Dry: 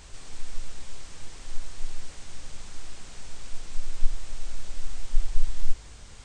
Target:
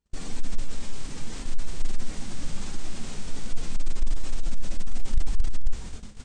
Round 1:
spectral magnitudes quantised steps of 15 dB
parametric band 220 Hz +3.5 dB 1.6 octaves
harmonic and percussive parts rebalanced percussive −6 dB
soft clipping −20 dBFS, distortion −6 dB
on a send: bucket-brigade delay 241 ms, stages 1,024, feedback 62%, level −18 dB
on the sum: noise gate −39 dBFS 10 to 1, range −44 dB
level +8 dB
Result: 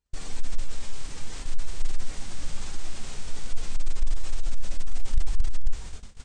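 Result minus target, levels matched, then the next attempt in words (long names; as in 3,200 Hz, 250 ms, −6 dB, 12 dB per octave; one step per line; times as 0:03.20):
250 Hz band −6.5 dB
spectral magnitudes quantised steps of 15 dB
parametric band 220 Hz +11.5 dB 1.6 octaves
harmonic and percussive parts rebalanced percussive −6 dB
soft clipping −20 dBFS, distortion −6 dB
on a send: bucket-brigade delay 241 ms, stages 1,024, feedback 62%, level −18 dB
on the sum: noise gate −39 dBFS 10 to 1, range −44 dB
level +8 dB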